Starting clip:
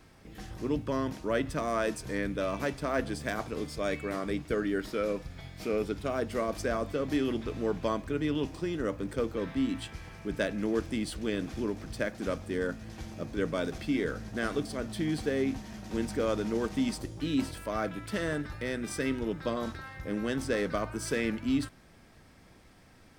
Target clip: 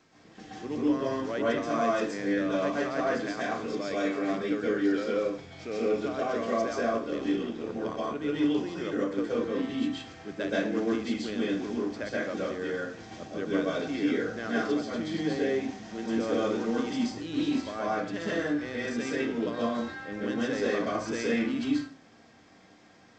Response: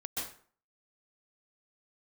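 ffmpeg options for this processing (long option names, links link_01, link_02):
-filter_complex "[0:a]highpass=180,asettb=1/sr,asplit=3[link_01][link_02][link_03];[link_01]atrim=end=6.854[link_04];[link_02]atrim=start=6.85:end=8.15,asetpts=PTS-STARTPTS,afade=type=in:duration=0.004:curve=qsin,afade=type=out:start_time=1.296:duration=0.004:curve=qsin,tremolo=f=76:d=0.889[link_05];[link_03]atrim=start=8.146[link_06];[link_04][link_05]acrossfade=duration=0.004:curve1=hsin:curve2=qsin[link_07];[link_07][link_06]acrossfade=duration=0.004:curve1=qsin:curve2=hsin[link_08];[1:a]atrim=start_sample=2205[link_09];[link_08][link_09]afir=irnorm=-1:irlink=0" -ar 16000 -c:a g722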